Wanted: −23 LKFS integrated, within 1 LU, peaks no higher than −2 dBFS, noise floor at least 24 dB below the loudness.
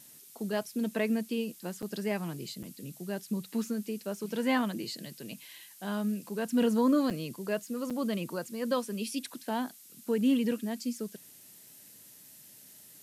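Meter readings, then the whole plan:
number of dropouts 4; longest dropout 6.6 ms; background noise floor −54 dBFS; target noise floor −57 dBFS; integrated loudness −32.5 LKFS; sample peak −17.5 dBFS; target loudness −23.0 LKFS
→ repair the gap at 0:01.82/0:02.63/0:07.10/0:07.90, 6.6 ms
noise reduction from a noise print 6 dB
level +9.5 dB

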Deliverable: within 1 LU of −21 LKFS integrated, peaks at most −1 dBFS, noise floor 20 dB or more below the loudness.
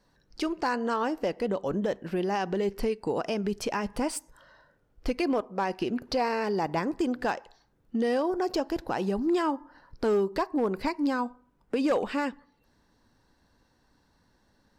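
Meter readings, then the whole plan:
share of clipped samples 0.4%; peaks flattened at −19.5 dBFS; integrated loudness −29.5 LKFS; sample peak −19.5 dBFS; target loudness −21.0 LKFS
→ clipped peaks rebuilt −19.5 dBFS
level +8.5 dB

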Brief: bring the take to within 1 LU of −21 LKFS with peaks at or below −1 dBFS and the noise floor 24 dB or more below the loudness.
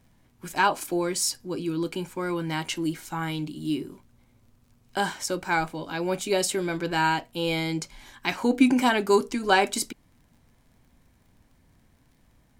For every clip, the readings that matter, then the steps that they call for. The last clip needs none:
crackle rate 36 per second; integrated loudness −26.5 LKFS; sample peak −6.5 dBFS; target loudness −21.0 LKFS
→ click removal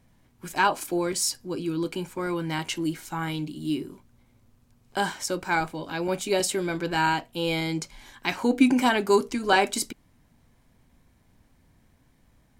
crackle rate 0.56 per second; integrated loudness −26.5 LKFS; sample peak −7.0 dBFS; target loudness −21.0 LKFS
→ level +5.5 dB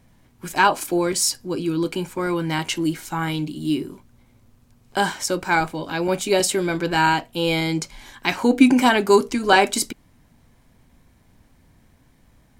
integrated loudness −21.0 LKFS; sample peak −1.5 dBFS; background noise floor −57 dBFS

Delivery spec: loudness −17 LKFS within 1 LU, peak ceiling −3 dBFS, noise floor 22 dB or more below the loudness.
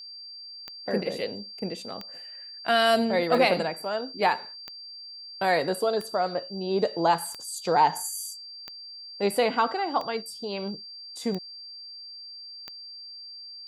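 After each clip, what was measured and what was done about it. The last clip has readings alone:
number of clicks 10; interfering tone 4,700 Hz; level of the tone −40 dBFS; integrated loudness −27.0 LKFS; sample peak −9.0 dBFS; target loudness −17.0 LKFS
→ click removal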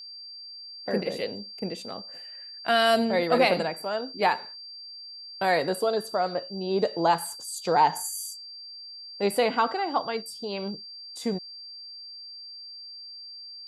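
number of clicks 0; interfering tone 4,700 Hz; level of the tone −40 dBFS
→ notch filter 4,700 Hz, Q 30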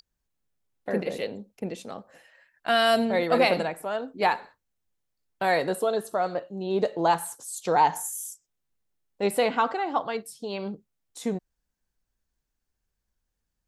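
interfering tone none found; integrated loudness −27.0 LKFS; sample peak −9.5 dBFS; target loudness −17.0 LKFS
→ level +10 dB
brickwall limiter −3 dBFS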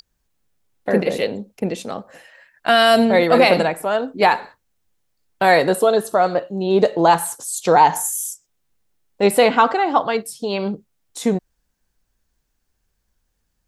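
integrated loudness −17.5 LKFS; sample peak −3.0 dBFS; background noise floor −72 dBFS

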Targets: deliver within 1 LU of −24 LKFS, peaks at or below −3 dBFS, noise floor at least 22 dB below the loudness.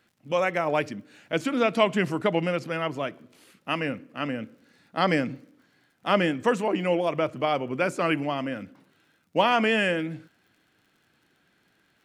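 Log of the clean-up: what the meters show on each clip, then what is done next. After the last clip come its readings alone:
crackle rate 44 per second; integrated loudness −26.5 LKFS; sample peak −7.0 dBFS; target loudness −24.0 LKFS
→ click removal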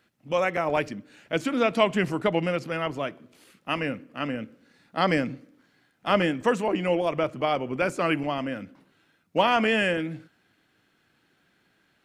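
crackle rate 0.083 per second; integrated loudness −26.5 LKFS; sample peak −7.0 dBFS; target loudness −24.0 LKFS
→ level +2.5 dB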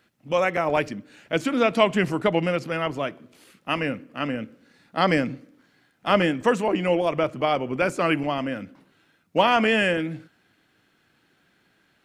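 integrated loudness −24.0 LKFS; sample peak −4.5 dBFS; background noise floor −66 dBFS

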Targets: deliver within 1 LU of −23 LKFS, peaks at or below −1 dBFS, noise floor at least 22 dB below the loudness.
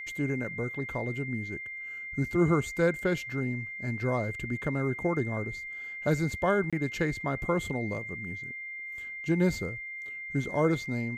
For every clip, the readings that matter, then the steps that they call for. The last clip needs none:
number of dropouts 1; longest dropout 26 ms; interfering tone 2,100 Hz; level of the tone −37 dBFS; integrated loudness −31.0 LKFS; sample peak −13.0 dBFS; target loudness −23.0 LKFS
→ repair the gap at 0:06.70, 26 ms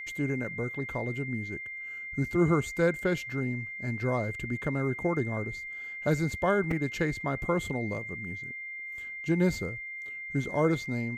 number of dropouts 0; interfering tone 2,100 Hz; level of the tone −37 dBFS
→ notch filter 2,100 Hz, Q 30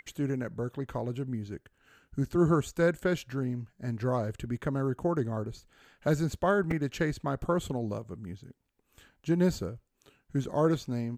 interfering tone none found; integrated loudness −31.0 LKFS; sample peak −13.0 dBFS; target loudness −23.0 LKFS
→ level +8 dB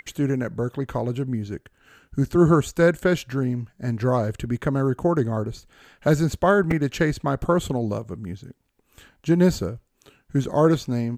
integrated loudness −23.0 LKFS; sample peak −5.0 dBFS; background noise floor −68 dBFS

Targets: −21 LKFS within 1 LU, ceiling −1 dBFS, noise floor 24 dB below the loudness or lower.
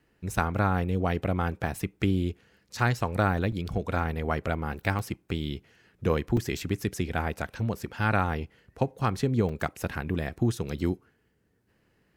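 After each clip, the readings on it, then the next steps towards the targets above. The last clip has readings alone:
number of dropouts 5; longest dropout 3.6 ms; integrated loudness −29.5 LKFS; sample peak −7.0 dBFS; target loudness −21.0 LKFS
→ repair the gap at 0:01.67/0:03.52/0:04.99/0:06.37/0:09.49, 3.6 ms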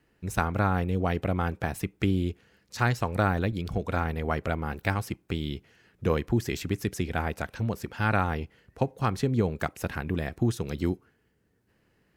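number of dropouts 0; integrated loudness −29.5 LKFS; sample peak −7.0 dBFS; target loudness −21.0 LKFS
→ level +8.5 dB
brickwall limiter −1 dBFS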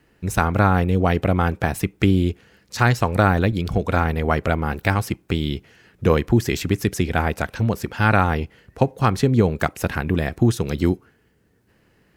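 integrated loudness −21.0 LKFS; sample peak −1.0 dBFS; background noise floor −61 dBFS

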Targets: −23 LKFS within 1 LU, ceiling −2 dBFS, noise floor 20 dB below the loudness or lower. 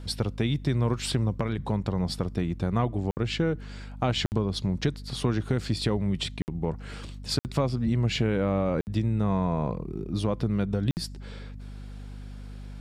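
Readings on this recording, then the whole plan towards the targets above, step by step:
number of dropouts 6; longest dropout 59 ms; mains hum 50 Hz; hum harmonics up to 250 Hz; level of the hum −39 dBFS; integrated loudness −28.5 LKFS; sample peak −12.0 dBFS; target loudness −23.0 LKFS
→ repair the gap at 0:03.11/0:04.26/0:06.42/0:07.39/0:08.81/0:10.91, 59 ms
hum removal 50 Hz, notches 5
level +5.5 dB

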